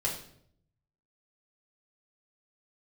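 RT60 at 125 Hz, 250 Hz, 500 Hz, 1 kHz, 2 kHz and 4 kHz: 1.2 s, 0.85 s, 0.75 s, 0.55 s, 0.55 s, 0.50 s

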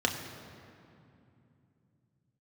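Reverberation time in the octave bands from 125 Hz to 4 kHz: 4.9 s, 3.9 s, 2.9 s, 2.6 s, 2.2 s, 1.7 s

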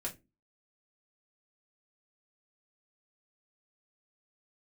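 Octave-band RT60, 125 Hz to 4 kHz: 0.35 s, 0.40 s, 0.30 s, 0.15 s, 0.20 s, 0.15 s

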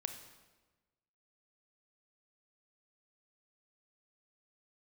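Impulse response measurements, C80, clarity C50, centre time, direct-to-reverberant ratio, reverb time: 10.5 dB, 8.5 dB, 19 ms, 7.0 dB, 1.2 s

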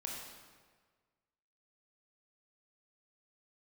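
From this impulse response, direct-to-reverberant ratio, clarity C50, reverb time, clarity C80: -2.5 dB, 0.5 dB, 1.6 s, 2.5 dB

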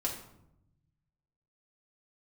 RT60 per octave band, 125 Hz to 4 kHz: 1.8 s, 1.3 s, 0.85 s, 0.75 s, 0.55 s, 0.50 s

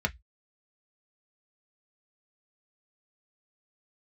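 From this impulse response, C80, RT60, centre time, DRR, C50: 39.5 dB, 0.10 s, 4 ms, 3.0 dB, 26.5 dB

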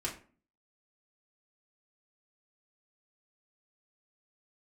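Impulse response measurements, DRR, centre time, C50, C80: -4.5 dB, 21 ms, 10.0 dB, 15.0 dB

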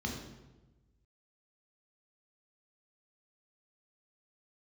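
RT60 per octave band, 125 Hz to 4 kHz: 1.6 s, 1.3 s, 1.2 s, 1.0 s, 0.85 s, 0.80 s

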